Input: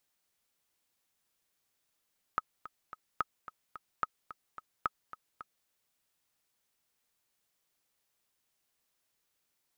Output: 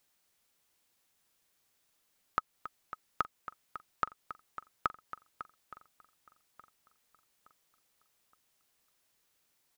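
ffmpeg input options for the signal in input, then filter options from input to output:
-f lavfi -i "aevalsrc='pow(10,(-16-15*gte(mod(t,3*60/218),60/218))/20)*sin(2*PI*1270*mod(t,60/218))*exp(-6.91*mod(t,60/218)/0.03)':duration=3.3:sample_rate=44100"
-filter_complex "[0:a]asplit=2[link_01][link_02];[link_02]acompressor=threshold=-39dB:ratio=6,volume=-3dB[link_03];[link_01][link_03]amix=inputs=2:normalize=0,asplit=2[link_04][link_05];[link_05]adelay=869,lowpass=frequency=4400:poles=1,volume=-18dB,asplit=2[link_06][link_07];[link_07]adelay=869,lowpass=frequency=4400:poles=1,volume=0.46,asplit=2[link_08][link_09];[link_09]adelay=869,lowpass=frequency=4400:poles=1,volume=0.46,asplit=2[link_10][link_11];[link_11]adelay=869,lowpass=frequency=4400:poles=1,volume=0.46[link_12];[link_04][link_06][link_08][link_10][link_12]amix=inputs=5:normalize=0"

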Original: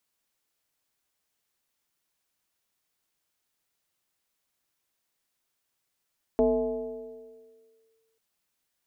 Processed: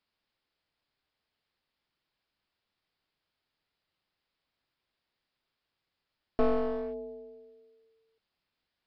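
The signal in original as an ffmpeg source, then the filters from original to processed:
-f lavfi -i "aevalsrc='0.133*pow(10,-3*t/1.87)*sin(2*PI*448*t+1.1*clip(1-t/1.65,0,1)*sin(2*PI*0.45*448*t))':duration=1.79:sample_rate=44100"
-af "aresample=11025,aeval=exprs='clip(val(0),-1,0.0168)':channel_layout=same,aresample=44100,lowshelf=frequency=170:gain=4"

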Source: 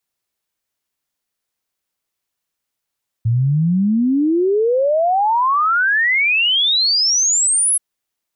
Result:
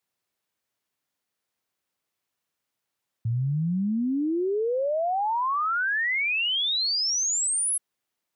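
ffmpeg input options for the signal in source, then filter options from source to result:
-f lavfi -i "aevalsrc='0.237*clip(min(t,4.53-t)/0.01,0,1)*sin(2*PI*110*4.53/log(11000/110)*(exp(log(11000/110)*t/4.53)-1))':duration=4.53:sample_rate=44100"
-af "highpass=85,highshelf=frequency=3800:gain=-5.5,alimiter=limit=-22.5dB:level=0:latency=1:release=11"

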